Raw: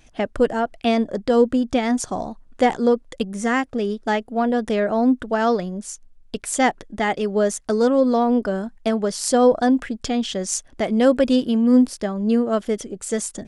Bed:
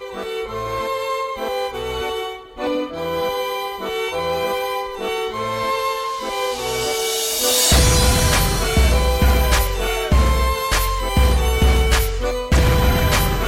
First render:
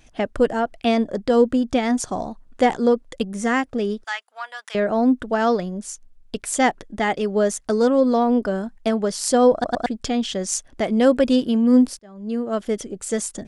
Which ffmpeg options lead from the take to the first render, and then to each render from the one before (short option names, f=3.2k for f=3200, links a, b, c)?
-filter_complex "[0:a]asettb=1/sr,asplit=3[a][b][c];[a]atrim=end=4.044[d];[b]atrim=start=4.04:end=4.75,asetpts=PTS-STARTPTS,afade=t=in:d=0.004:c=qsin,afade=t=out:st=0.706:d=0.004:c=qsin,highpass=f=1.1k:w=0.5412,highpass=f=1.1k:w=1.3066[e];[c]atrim=start=4.746[f];[d][e]acrossfade=d=0.004:c1=hsin:c2=qsin[g];[g][f]acrossfade=d=0.004:c1=qsin:c2=hsin,asplit=5[h][i][j][k][l];[h]atrim=end=9.642[m];[i]atrim=start=9.528:end=9.642[n];[j]atrim=start=9.528:end=9.642[o];[k]atrim=start=9.858:end=11.99,asetpts=PTS-STARTPTS,afade=t=out:st=2.128:d=0.004:c=hsin[p];[l]atrim=start=11.99,asetpts=PTS-STARTPTS,afade=t=in:d=0.78[q];[m][n]acrossfade=d=0.004:c1=hsin:c2=hsin[r];[r][o]acrossfade=d=0.004:c1=hsin:c2=hsin[s];[p][q]concat=n=2:v=0:a=1[t];[s][t]acrossfade=d=0.004:c1=hsin:c2=hsin"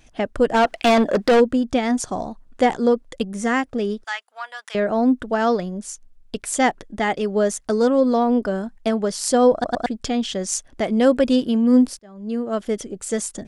-filter_complex "[0:a]asplit=3[a][b][c];[a]afade=t=out:st=0.53:d=0.02[d];[b]asplit=2[e][f];[f]highpass=f=720:p=1,volume=23dB,asoftclip=type=tanh:threshold=-8dB[g];[e][g]amix=inputs=2:normalize=0,lowpass=f=4.3k:p=1,volume=-6dB,afade=t=in:st=0.53:d=0.02,afade=t=out:st=1.39:d=0.02[h];[c]afade=t=in:st=1.39:d=0.02[i];[d][h][i]amix=inputs=3:normalize=0"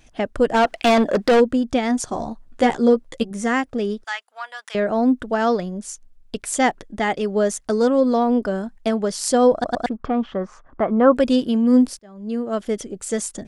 -filter_complex "[0:a]asettb=1/sr,asplit=3[a][b][c];[a]atrim=end=2.104[d];[b]atrim=start=2.1:end=3.31,asetpts=PTS-STARTPTS,afade=t=in:d=0.004:c=qsin,afade=t=out:st=1.206:d=0.004:c=qsin,asplit=2[e][f];[f]adelay=13,volume=-5dB[g];[e][g]amix=inputs=2:normalize=0,atrim=end_sample=53361[h];[c]atrim=start=3.306[i];[d][h]acrossfade=d=0.004:c1=hsin:c2=qsin[j];[j][i]acrossfade=d=0.004:c1=qsin:c2=hsin,asettb=1/sr,asplit=3[k][l][m];[k]atrim=end=9.894[n];[l]atrim=start=9.89:end=11.15,asetpts=PTS-STARTPTS,afade=t=in:d=0.004:c=qsin,afade=t=out:st=1.256:d=0.004:c=qsin,lowpass=f=1.2k:t=q:w=4.3[o];[m]atrim=start=11.146[p];[n][o]acrossfade=d=0.004:c1=hsin:c2=qsin[q];[q][p]acrossfade=d=0.004:c1=qsin:c2=hsin"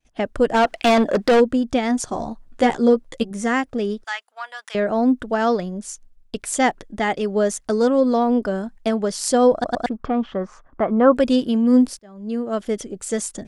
-af "agate=range=-33dB:threshold=-43dB:ratio=3:detection=peak"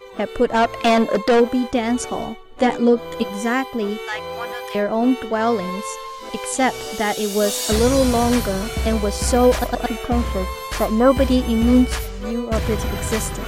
-filter_complex "[1:a]volume=-8.5dB[a];[0:a][a]amix=inputs=2:normalize=0"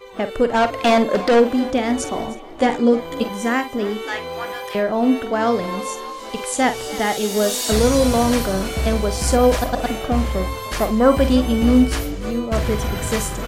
-filter_complex "[0:a]asplit=2[a][b];[b]adelay=47,volume=-11dB[c];[a][c]amix=inputs=2:normalize=0,asplit=5[d][e][f][g][h];[e]adelay=307,afreqshift=40,volume=-18dB[i];[f]adelay=614,afreqshift=80,volume=-23.7dB[j];[g]adelay=921,afreqshift=120,volume=-29.4dB[k];[h]adelay=1228,afreqshift=160,volume=-35dB[l];[d][i][j][k][l]amix=inputs=5:normalize=0"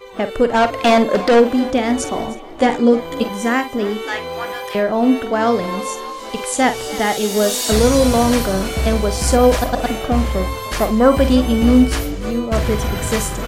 -af "volume=2.5dB,alimiter=limit=-2dB:level=0:latency=1"